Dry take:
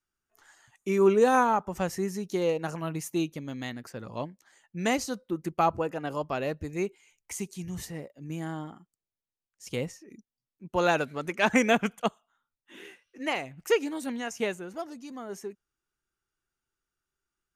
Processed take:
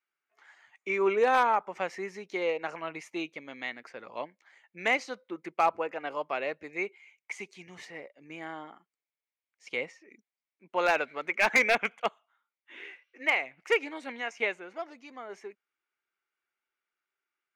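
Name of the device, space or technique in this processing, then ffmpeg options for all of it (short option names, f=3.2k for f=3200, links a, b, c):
megaphone: -af "highpass=480,lowpass=3.5k,equalizer=f=2.2k:t=o:w=0.33:g=11,asoftclip=type=hard:threshold=-15.5dB"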